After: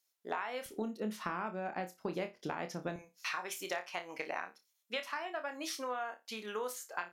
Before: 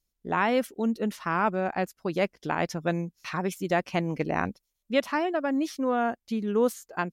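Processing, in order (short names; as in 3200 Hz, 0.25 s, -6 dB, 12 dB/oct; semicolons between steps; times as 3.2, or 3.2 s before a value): HPF 650 Hz 12 dB/oct, from 0.66 s 160 Hz, from 2.96 s 820 Hz; compressor 12:1, threshold -38 dBFS, peak gain reduction 19 dB; flutter echo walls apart 4.8 m, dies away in 0.22 s; gain +3 dB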